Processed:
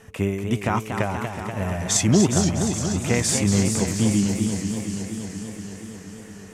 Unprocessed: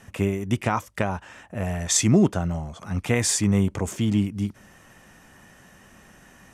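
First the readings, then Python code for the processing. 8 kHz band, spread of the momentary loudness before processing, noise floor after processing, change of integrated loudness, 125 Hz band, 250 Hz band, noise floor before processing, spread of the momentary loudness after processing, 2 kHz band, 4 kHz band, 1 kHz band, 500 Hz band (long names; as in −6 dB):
+3.0 dB, 12 LU, −41 dBFS, +1.5 dB, +2.0 dB, +2.5 dB, −53 dBFS, 17 LU, +2.0 dB, +3.0 dB, +2.0 dB, +2.0 dB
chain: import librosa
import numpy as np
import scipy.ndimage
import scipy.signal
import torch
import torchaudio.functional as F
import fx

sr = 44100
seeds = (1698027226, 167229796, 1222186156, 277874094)

y = fx.echo_wet_highpass(x, sr, ms=411, feedback_pct=57, hz=5300.0, wet_db=-5.5)
y = y + 10.0 ** (-53.0 / 20.0) * np.sin(2.0 * np.pi * 440.0 * np.arange(len(y)) / sr)
y = fx.echo_warbled(y, sr, ms=237, feedback_pct=78, rate_hz=2.8, cents=185, wet_db=-7.0)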